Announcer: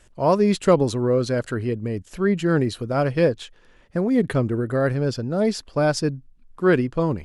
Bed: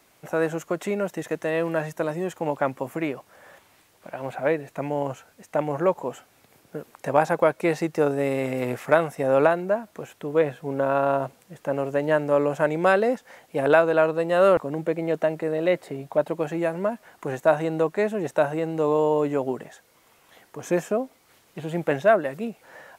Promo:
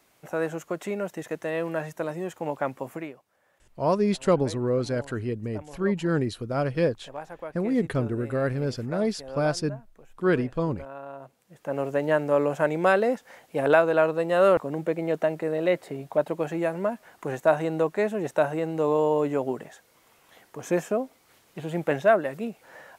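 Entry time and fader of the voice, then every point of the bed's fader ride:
3.60 s, -5.0 dB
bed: 2.94 s -4 dB
3.22 s -18 dB
11.16 s -18 dB
11.81 s -1.5 dB

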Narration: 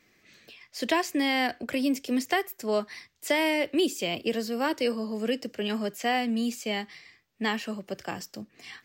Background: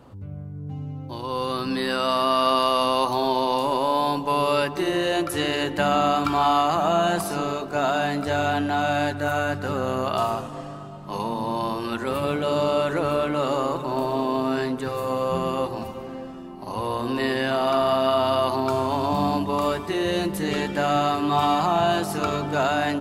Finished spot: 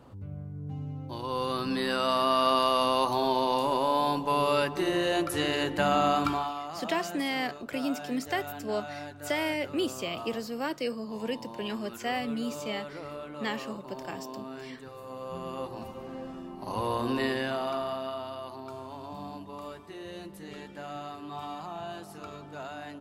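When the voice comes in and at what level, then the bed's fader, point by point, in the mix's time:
6.00 s, -5.0 dB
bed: 6.29 s -4 dB
6.53 s -17 dB
15.02 s -17 dB
16.33 s -3 dB
17.11 s -3 dB
18.36 s -18 dB

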